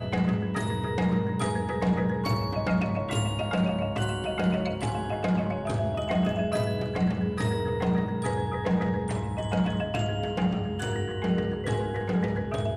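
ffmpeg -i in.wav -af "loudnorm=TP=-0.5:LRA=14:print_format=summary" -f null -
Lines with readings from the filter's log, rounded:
Input Integrated:    -28.2 LUFS
Input True Peak:     -13.9 dBTP
Input LRA:             1.4 LU
Input Threshold:     -38.2 LUFS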